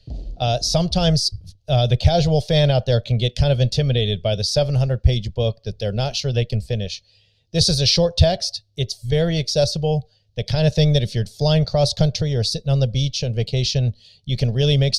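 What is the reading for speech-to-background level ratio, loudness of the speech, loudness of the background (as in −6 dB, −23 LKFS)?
17.0 dB, −20.0 LKFS, −37.0 LKFS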